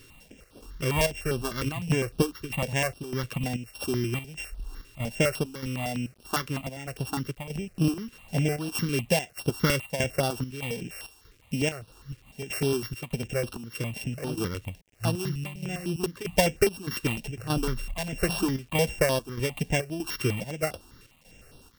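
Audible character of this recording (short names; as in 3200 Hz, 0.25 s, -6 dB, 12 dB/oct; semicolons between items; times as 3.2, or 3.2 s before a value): a buzz of ramps at a fixed pitch in blocks of 16 samples; chopped level 1.6 Hz, depth 65%, duty 70%; a quantiser's noise floor 10-bit, dither none; notches that jump at a steady rate 9.9 Hz 200–7100 Hz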